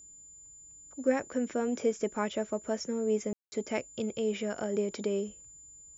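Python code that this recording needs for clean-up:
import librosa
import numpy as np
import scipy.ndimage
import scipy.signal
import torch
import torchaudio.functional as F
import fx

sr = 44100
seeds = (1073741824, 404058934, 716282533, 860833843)

y = fx.notch(x, sr, hz=7100.0, q=30.0)
y = fx.fix_ambience(y, sr, seeds[0], print_start_s=0.12, print_end_s=0.62, start_s=3.33, end_s=3.52)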